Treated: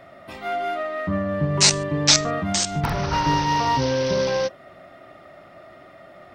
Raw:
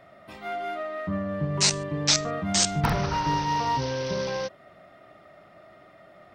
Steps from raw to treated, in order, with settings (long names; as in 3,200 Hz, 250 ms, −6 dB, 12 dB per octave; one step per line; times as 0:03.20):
0:02.38–0:03.13: downward compressor 4 to 1, threshold −26 dBFS, peak gain reduction 7.5 dB
on a send: convolution reverb RT60 0.15 s, pre-delay 3 ms, DRR 13.5 dB
on the sum: level +6 dB